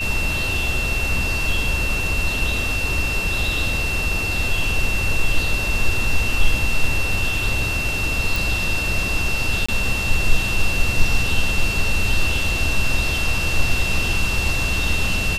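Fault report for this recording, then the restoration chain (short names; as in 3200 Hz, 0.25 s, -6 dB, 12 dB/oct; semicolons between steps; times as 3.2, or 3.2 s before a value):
tone 2700 Hz -23 dBFS
8.36 pop
9.66–9.69 gap 25 ms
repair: de-click; notch 2700 Hz, Q 30; interpolate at 9.66, 25 ms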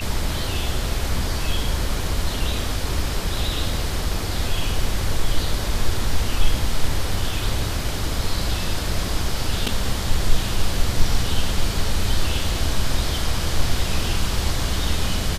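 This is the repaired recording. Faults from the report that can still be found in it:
none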